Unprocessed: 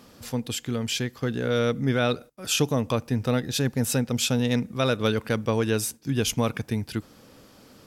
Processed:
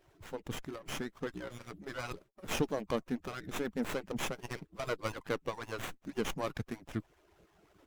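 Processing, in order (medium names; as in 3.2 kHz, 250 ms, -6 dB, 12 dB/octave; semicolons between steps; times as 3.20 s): harmonic-percussive separation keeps percussive; sliding maximum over 9 samples; trim -7 dB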